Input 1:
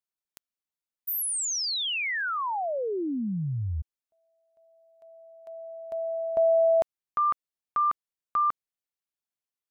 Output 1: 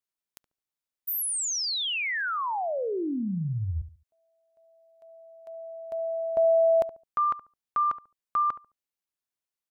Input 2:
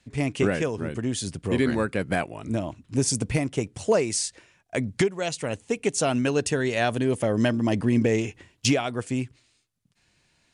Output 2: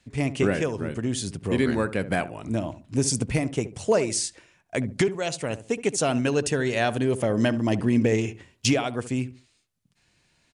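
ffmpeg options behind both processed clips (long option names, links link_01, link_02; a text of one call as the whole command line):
ffmpeg -i in.wav -filter_complex "[0:a]asplit=2[link_01][link_02];[link_02]adelay=71,lowpass=frequency=930:poles=1,volume=-12.5dB,asplit=2[link_03][link_04];[link_04]adelay=71,lowpass=frequency=930:poles=1,volume=0.29,asplit=2[link_05][link_06];[link_06]adelay=71,lowpass=frequency=930:poles=1,volume=0.29[link_07];[link_01][link_03][link_05][link_07]amix=inputs=4:normalize=0" out.wav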